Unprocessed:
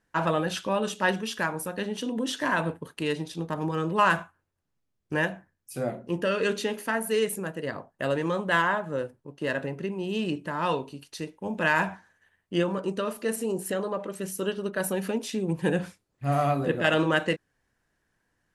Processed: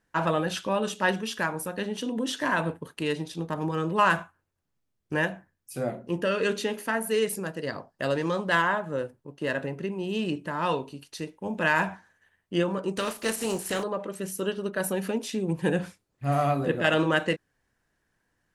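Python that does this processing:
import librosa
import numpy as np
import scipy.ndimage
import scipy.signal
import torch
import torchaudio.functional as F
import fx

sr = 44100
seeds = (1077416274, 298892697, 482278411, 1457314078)

y = fx.peak_eq(x, sr, hz=4900.0, db=11.0, octaves=0.44, at=(7.27, 8.55))
y = fx.spec_flatten(y, sr, power=0.62, at=(12.96, 13.82), fade=0.02)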